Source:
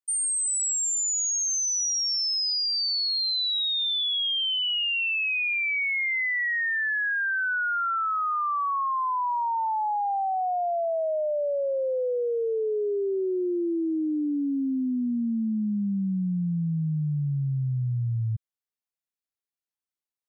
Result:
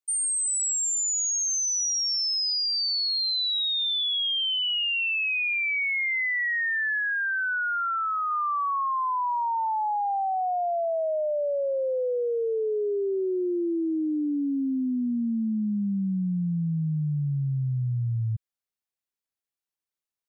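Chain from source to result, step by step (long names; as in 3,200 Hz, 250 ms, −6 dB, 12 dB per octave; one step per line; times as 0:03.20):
0:06.99–0:08.31: low-shelf EQ 380 Hz −10.5 dB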